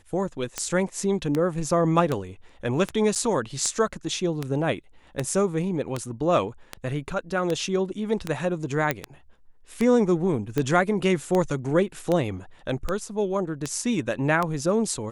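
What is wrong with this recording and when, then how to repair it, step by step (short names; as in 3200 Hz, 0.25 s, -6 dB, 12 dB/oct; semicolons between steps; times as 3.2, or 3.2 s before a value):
tick 78 rpm -12 dBFS
3.15–3.16 gap 7.4 ms
8.91 pop -9 dBFS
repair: de-click; interpolate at 3.15, 7.4 ms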